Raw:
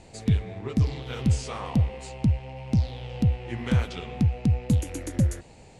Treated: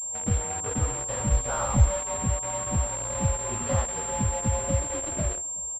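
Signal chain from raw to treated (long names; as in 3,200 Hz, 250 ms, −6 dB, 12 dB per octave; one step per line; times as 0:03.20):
partials spread apart or drawn together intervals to 114%
flat-topped bell 840 Hz +11.5 dB
on a send: single-tap delay 376 ms −19 dB
on the sum: noise gate with hold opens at −42 dBFS
in parallel at 0 dB: bit reduction 5 bits
0:01.32–0:01.97: on the sum: low-shelf EQ 100 Hz +11.5 dB
switching amplifier with a slow clock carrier 7,400 Hz
level −7.5 dB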